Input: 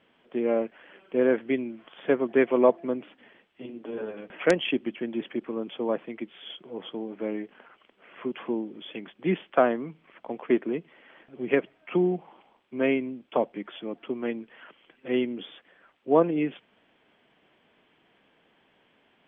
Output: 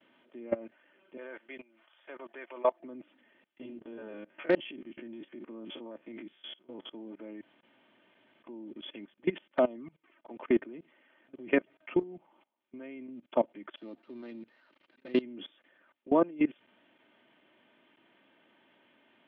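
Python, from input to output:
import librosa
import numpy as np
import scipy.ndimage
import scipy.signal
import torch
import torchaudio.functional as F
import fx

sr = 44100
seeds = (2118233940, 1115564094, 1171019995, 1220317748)

y = fx.highpass(x, sr, hz=720.0, slope=12, at=(1.17, 2.8))
y = fx.spec_steps(y, sr, hold_ms=50, at=(3.77, 6.91))
y = fx.env_flanger(y, sr, rest_ms=3.9, full_db=-18.5, at=(9.46, 10.31))
y = fx.dead_time(y, sr, dead_ms=0.12, at=(13.76, 15.22))
y = fx.edit(y, sr, fx.room_tone_fill(start_s=7.41, length_s=1.03),
    fx.fade_out_to(start_s=11.53, length_s=1.55, floor_db=-11.0), tone=tone)
y = scipy.signal.sosfilt(scipy.signal.cheby1(4, 1.0, [110.0, 4000.0], 'bandpass', fs=sr, output='sos'), y)
y = y + 0.48 * np.pad(y, (int(3.3 * sr / 1000.0), 0))[:len(y)]
y = fx.level_steps(y, sr, step_db=22)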